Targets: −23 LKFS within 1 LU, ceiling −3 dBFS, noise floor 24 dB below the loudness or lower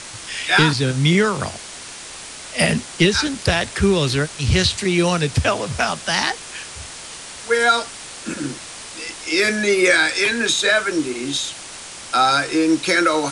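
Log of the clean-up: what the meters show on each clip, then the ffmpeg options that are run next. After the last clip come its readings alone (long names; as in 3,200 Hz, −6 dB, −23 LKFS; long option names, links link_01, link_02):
background noise floor −36 dBFS; target noise floor −43 dBFS; integrated loudness −18.5 LKFS; sample peak −4.0 dBFS; target loudness −23.0 LKFS
→ -af "afftdn=noise_reduction=7:noise_floor=-36"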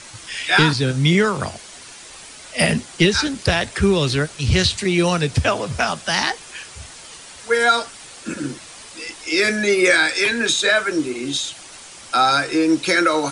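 background noise floor −40 dBFS; target noise floor −43 dBFS
→ -af "afftdn=noise_reduction=6:noise_floor=-40"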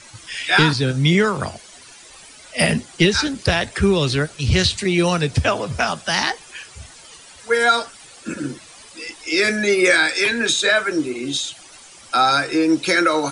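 background noise floor −44 dBFS; integrated loudness −18.5 LKFS; sample peak −4.0 dBFS; target loudness −23.0 LKFS
→ -af "volume=-4.5dB"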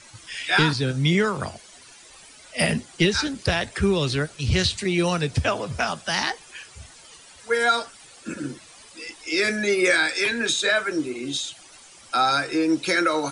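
integrated loudness −23.0 LKFS; sample peak −8.5 dBFS; background noise floor −48 dBFS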